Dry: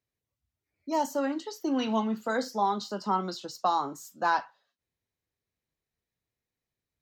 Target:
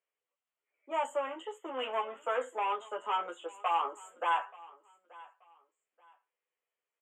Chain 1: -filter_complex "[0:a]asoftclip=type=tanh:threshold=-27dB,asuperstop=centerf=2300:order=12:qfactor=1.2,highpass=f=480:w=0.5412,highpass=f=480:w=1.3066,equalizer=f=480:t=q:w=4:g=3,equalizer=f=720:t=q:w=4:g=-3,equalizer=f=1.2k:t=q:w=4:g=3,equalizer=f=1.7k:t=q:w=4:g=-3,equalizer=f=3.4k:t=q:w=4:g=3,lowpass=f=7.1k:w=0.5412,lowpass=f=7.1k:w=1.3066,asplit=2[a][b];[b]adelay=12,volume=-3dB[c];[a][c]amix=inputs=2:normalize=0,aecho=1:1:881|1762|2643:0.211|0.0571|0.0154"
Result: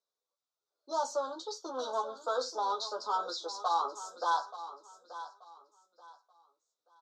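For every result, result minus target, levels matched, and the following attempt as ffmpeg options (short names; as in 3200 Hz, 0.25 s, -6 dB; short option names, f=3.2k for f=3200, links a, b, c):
echo-to-direct +8 dB; 2000 Hz band -5.0 dB
-filter_complex "[0:a]asoftclip=type=tanh:threshold=-27dB,asuperstop=centerf=2300:order=12:qfactor=1.2,highpass=f=480:w=0.5412,highpass=f=480:w=1.3066,equalizer=f=480:t=q:w=4:g=3,equalizer=f=720:t=q:w=4:g=-3,equalizer=f=1.2k:t=q:w=4:g=3,equalizer=f=1.7k:t=q:w=4:g=-3,equalizer=f=3.4k:t=q:w=4:g=3,lowpass=f=7.1k:w=0.5412,lowpass=f=7.1k:w=1.3066,asplit=2[a][b];[b]adelay=12,volume=-3dB[c];[a][c]amix=inputs=2:normalize=0,aecho=1:1:881|1762:0.0841|0.0227"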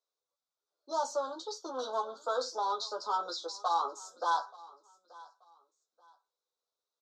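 2000 Hz band -5.5 dB
-filter_complex "[0:a]asoftclip=type=tanh:threshold=-27dB,asuperstop=centerf=4900:order=12:qfactor=1.2,highpass=f=480:w=0.5412,highpass=f=480:w=1.3066,equalizer=f=480:t=q:w=4:g=3,equalizer=f=720:t=q:w=4:g=-3,equalizer=f=1.2k:t=q:w=4:g=3,equalizer=f=1.7k:t=q:w=4:g=-3,equalizer=f=3.4k:t=q:w=4:g=3,lowpass=f=7.1k:w=0.5412,lowpass=f=7.1k:w=1.3066,asplit=2[a][b];[b]adelay=12,volume=-3dB[c];[a][c]amix=inputs=2:normalize=0,aecho=1:1:881|1762:0.0841|0.0227"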